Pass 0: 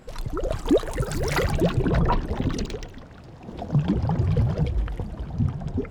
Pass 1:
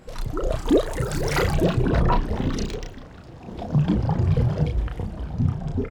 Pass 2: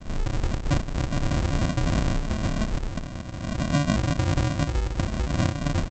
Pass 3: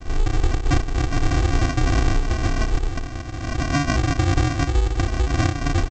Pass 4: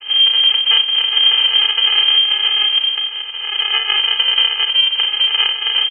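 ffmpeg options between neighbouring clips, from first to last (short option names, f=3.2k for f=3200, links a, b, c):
-filter_complex "[0:a]asplit=2[a][b];[b]adelay=33,volume=-4dB[c];[a][c]amix=inputs=2:normalize=0"
-af "acompressor=threshold=-31dB:ratio=4,aresample=16000,acrusher=samples=37:mix=1:aa=0.000001,aresample=44100,volume=8.5dB"
-af "aecho=1:1:2.6:0.84,volume=2.5dB"
-af "aecho=1:1:37|47:0.299|0.266,lowpass=f=2.7k:t=q:w=0.5098,lowpass=f=2.7k:t=q:w=0.6013,lowpass=f=2.7k:t=q:w=0.9,lowpass=f=2.7k:t=q:w=2.563,afreqshift=-3200,volume=3.5dB"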